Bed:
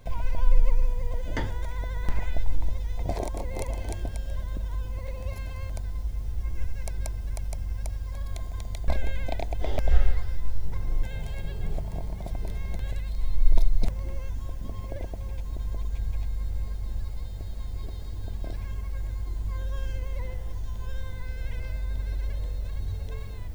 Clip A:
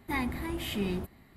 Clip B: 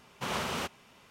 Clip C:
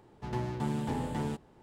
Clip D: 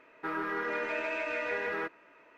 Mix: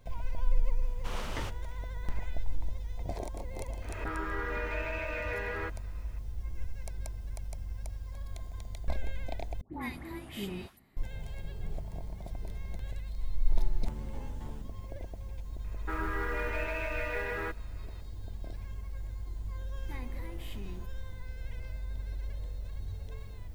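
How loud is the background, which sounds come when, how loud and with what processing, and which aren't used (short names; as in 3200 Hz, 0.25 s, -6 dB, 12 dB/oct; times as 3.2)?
bed -7.5 dB
0.83 add B -8 dB
3.82 add D -3 dB + backwards sustainer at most 73 dB/s
9.61 replace with A -7 dB + dispersion highs, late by 0.121 s, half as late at 1200 Hz
13.26 add C -14.5 dB
15.64 add D -2 dB + modulation noise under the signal 27 dB
19.8 add A -9 dB + compressor 2:1, threshold -38 dBFS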